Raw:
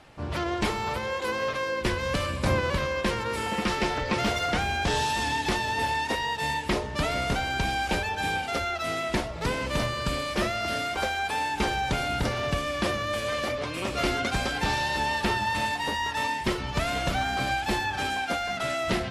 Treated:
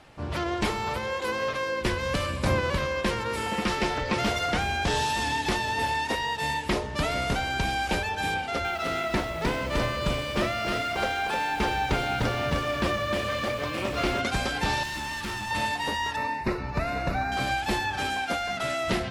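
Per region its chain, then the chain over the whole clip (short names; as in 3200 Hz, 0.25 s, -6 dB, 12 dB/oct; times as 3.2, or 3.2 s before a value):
8.34–14.21 high shelf 6400 Hz -8.5 dB + lo-fi delay 0.306 s, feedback 35%, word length 8-bit, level -4.5 dB
14.83–15.51 band shelf 590 Hz -12.5 dB 1.1 oct + hard clip -30.5 dBFS
16.16–17.32 Butterworth band-stop 3200 Hz, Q 3.5 + bell 8400 Hz -14 dB 1.7 oct
whole clip: dry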